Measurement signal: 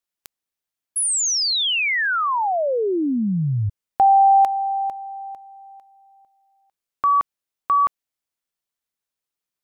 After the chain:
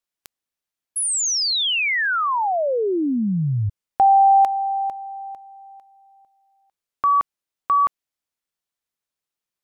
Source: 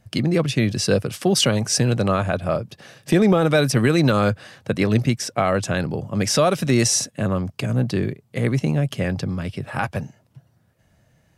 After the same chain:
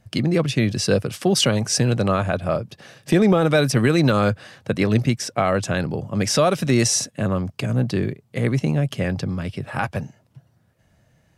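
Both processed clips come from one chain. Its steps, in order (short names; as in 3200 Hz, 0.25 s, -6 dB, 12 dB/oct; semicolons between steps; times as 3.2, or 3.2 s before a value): high shelf 11000 Hz -3.5 dB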